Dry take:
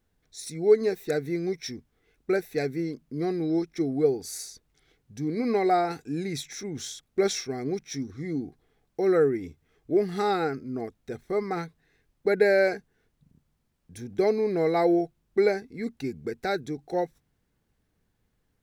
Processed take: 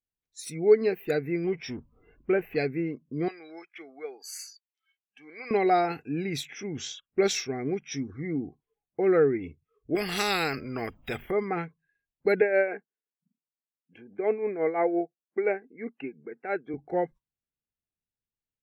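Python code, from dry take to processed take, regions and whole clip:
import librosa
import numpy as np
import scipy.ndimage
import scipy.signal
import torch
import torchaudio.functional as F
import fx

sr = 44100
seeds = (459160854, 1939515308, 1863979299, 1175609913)

y = fx.chain(x, sr, fx.law_mismatch(coded='mu'),
    fx.high_shelf(hz=3200.0, db=-10.0), at=(1.44, 2.56))
y = fx.chain(y, sr, fx.highpass(hz=1100.0, slope=12),
    fx.high_shelf(hz=9000.0, db=-5.0), at=(3.28, 5.51))
y = fx.chain(y, sr, fx.env_lowpass(base_hz=2800.0, full_db=-27.0),
    fx.high_shelf(hz=9500.0, db=2.0), at=(6.5, 9.05))
y = fx.chain(y, sr, fx.high_shelf(hz=7400.0, db=3.5),
    fx.spectral_comp(ratio=2.0), at=(9.95, 11.31))
y = fx.chain(y, sr, fx.tremolo(hz=5.8, depth=0.6),
    fx.bandpass_edges(low_hz=290.0, high_hz=2500.0), at=(12.41, 16.74))
y = fx.noise_reduce_blind(y, sr, reduce_db=26)
y = fx.peak_eq(y, sr, hz=2700.0, db=9.0, octaves=0.47)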